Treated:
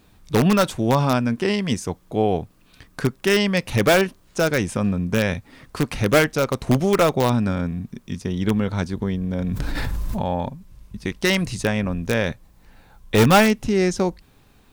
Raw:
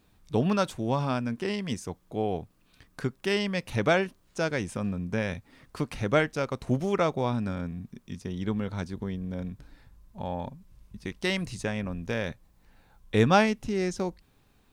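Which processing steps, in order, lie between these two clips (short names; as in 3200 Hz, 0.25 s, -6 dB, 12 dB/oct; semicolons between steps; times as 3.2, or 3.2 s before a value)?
in parallel at -5.5 dB: wrapped overs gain 17 dB; 9.39–10.23 on the sum: fast leveller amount 100%; gain +5.5 dB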